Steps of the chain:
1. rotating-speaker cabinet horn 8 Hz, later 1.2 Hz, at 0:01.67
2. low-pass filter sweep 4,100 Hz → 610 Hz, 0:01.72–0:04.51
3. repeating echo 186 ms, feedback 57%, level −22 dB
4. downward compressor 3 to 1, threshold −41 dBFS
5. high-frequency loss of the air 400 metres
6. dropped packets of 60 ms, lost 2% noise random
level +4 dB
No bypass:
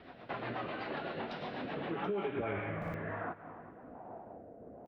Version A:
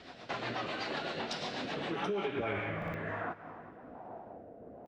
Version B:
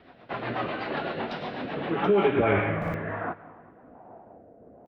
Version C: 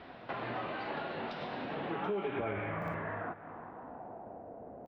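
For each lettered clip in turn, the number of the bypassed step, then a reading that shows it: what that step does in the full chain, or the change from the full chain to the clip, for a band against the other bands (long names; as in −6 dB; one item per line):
5, 4 kHz band +8.5 dB
4, average gain reduction 6.0 dB
1, change in momentary loudness spread −3 LU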